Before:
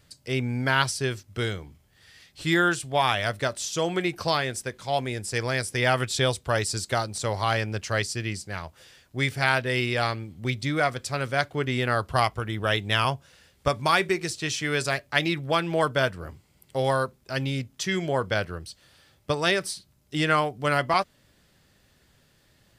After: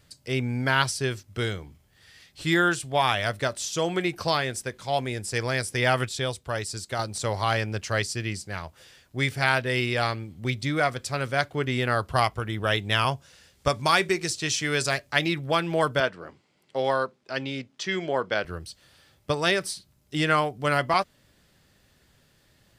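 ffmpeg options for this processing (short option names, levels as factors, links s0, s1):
-filter_complex "[0:a]asettb=1/sr,asplit=3[s0][s1][s2];[s0]atrim=end=13.114[s3];[s1]atrim=start=13.11:end=15.15,asetpts=PTS-STARTPTS,afade=t=in:d=0.004:c=qsin,afade=t=out:st=2.036:d=0.004:c=qsin,equalizer=f=6300:w=0.87:g=4.5[s4];[s2]atrim=start=15.146[s5];[s3][s4]acrossfade=d=0.004:c1=hsin:c2=qsin[s6];[s6][s5]acrossfade=d=0.004:c1=qsin:c2=hsin,asettb=1/sr,asplit=3[s7][s8][s9];[s7]atrim=end=16.004[s10];[s8]atrim=start=16:end=18.45,asetpts=PTS-STARTPTS,afade=t=in:d=0.004:c=qsin,afade=t=out:st=2.446:d=0.004:c=qsin,highpass=230,lowpass=5100[s11];[s9]atrim=start=18.446[s12];[s10][s11]acrossfade=d=0.004:c1=hsin:c2=qsin[s13];[s13][s12]acrossfade=d=0.004:c1=qsin:c2=hsin,asplit=3[s14][s15][s16];[s14]atrim=end=6.092[s17];[s15]atrim=start=6.088:end=6.992,asetpts=PTS-STARTPTS,volume=0.562[s18];[s16]atrim=start=6.988[s19];[s17][s18]acrossfade=d=0.004:c1=hsin:c2=hsin[s20];[s20][s19]acrossfade=d=0.004:c1=hsin:c2=hsin"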